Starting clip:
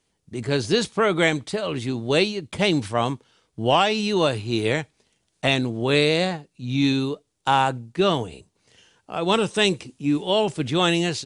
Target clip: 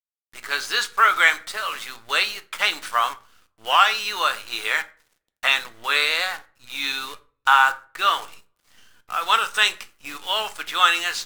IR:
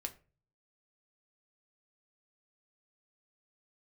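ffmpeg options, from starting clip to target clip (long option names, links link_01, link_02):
-filter_complex "[0:a]highpass=frequency=1300:width_type=q:width=3.2,acrusher=bits=7:dc=4:mix=0:aa=0.000001,asplit=2[link_01][link_02];[1:a]atrim=start_sample=2205,asetrate=35280,aresample=44100[link_03];[link_02][link_03]afir=irnorm=-1:irlink=0,volume=4dB[link_04];[link_01][link_04]amix=inputs=2:normalize=0,volume=-6dB"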